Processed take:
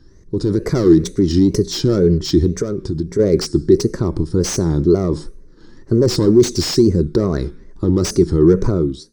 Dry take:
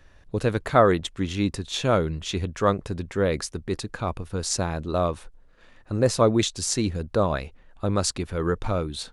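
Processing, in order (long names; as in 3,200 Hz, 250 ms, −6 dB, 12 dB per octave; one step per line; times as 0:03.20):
fade-out on the ending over 0.53 s
hard clipping −18 dBFS, distortion −10 dB
convolution reverb RT60 0.40 s, pre-delay 3 ms, DRR 14.5 dB
brickwall limiter −8.5 dBFS, peak gain reduction 8.5 dB
0:02.56–0:03.19: downward compressor 4 to 1, threshold −23 dBFS, peak gain reduction 8.5 dB
dynamic equaliser 580 Hz, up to +3 dB, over −28 dBFS, Q 0.82
automatic gain control
drawn EQ curve 160 Hz 0 dB, 240 Hz −5 dB, 370 Hz +7 dB, 730 Hz −22 dB, 1,300 Hz −5 dB, 1,900 Hz −4 dB, 2,600 Hz −10 dB, 7,700 Hz +4 dB, 11,000 Hz +1 dB
tape wow and flutter 150 cents
slew-rate limiting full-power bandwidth 590 Hz
level −2 dB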